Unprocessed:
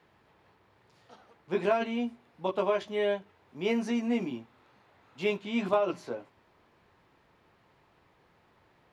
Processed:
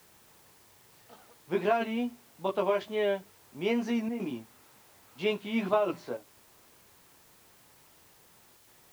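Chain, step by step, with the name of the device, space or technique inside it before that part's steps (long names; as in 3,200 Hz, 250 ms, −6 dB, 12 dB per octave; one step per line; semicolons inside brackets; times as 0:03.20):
worn cassette (low-pass filter 6,000 Hz; tape wow and flutter; tape dropouts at 0:04.09/0:06.17/0:08.57, 105 ms −7 dB; white noise bed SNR 27 dB)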